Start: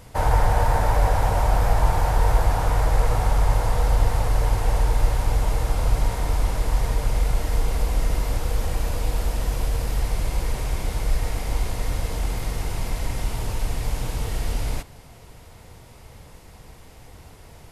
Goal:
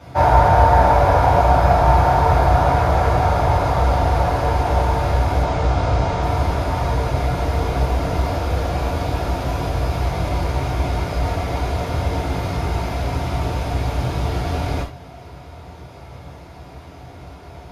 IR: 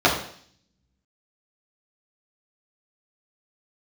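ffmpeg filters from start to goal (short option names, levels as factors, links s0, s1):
-filter_complex "[0:a]asettb=1/sr,asplit=3[s0][s1][s2];[s0]atrim=end=5.414[s3];[s1]atrim=start=5.41:end=6.22,asetpts=PTS-STARTPTS,afade=t=in:d=0.004:c=qsin,afade=t=out:st=0.806:d=0.004:c=qsin,lowpass=f=8300:w=0.5412,lowpass=f=8300:w=1.3066[s4];[s2]atrim=start=6.216[s5];[s3][s4]acrossfade=d=0.004:c1=hsin:c2=qsin[s6];[s6][s5]acrossfade=d=0.004:c1=qsin:c2=hsin[s7];[1:a]atrim=start_sample=2205,atrim=end_sample=4410,asetrate=43659,aresample=44100[s8];[s7][s8]afir=irnorm=-1:irlink=0,volume=0.224"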